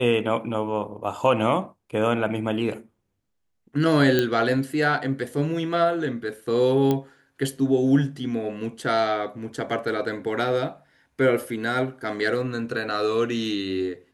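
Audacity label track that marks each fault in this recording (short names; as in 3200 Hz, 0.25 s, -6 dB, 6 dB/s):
4.190000	4.190000	pop -8 dBFS
6.910000	6.910000	pop -11 dBFS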